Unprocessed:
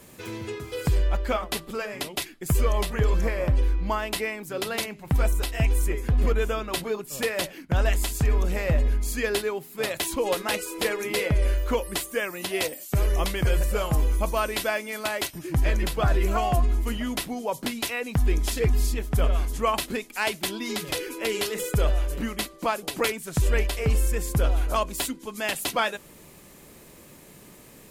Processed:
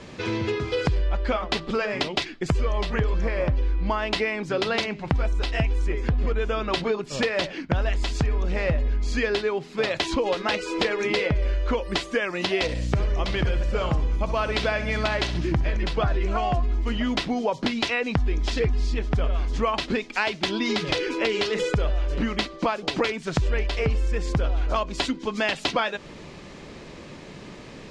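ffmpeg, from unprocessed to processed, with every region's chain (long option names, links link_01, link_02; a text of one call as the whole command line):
ffmpeg -i in.wav -filter_complex "[0:a]asettb=1/sr,asplit=3[link_01][link_02][link_03];[link_01]atrim=end=12.624[link_04];[link_02]atrim=start=12.62:end=15.77,asetpts=PTS-STARTPTS,afade=type=in:duration=0.004:curve=qsin,afade=type=out:start_time=3.146:duration=0.004:curve=qsin,aeval=exprs='val(0)+0.02*(sin(2*PI*60*n/s)+sin(2*PI*2*60*n/s)/2+sin(2*PI*3*60*n/s)/3+sin(2*PI*4*60*n/s)/4+sin(2*PI*5*60*n/s)/5)':channel_layout=same,aecho=1:1:65|130|195|260:0.224|0.0963|0.0414|0.0178,atrim=end_sample=138915[link_05];[link_03]atrim=start=15.766[link_06];[link_04][link_05]acrossfade=duration=0.004:curve1=hsin:curve2=qsin[link_07];[link_07][link_06]acrossfade=duration=0.004:curve1=qsin:curve2=hsin,lowpass=frequency=5300:width=0.5412,lowpass=frequency=5300:width=1.3066,acompressor=threshold=-30dB:ratio=6,volume=9dB" out.wav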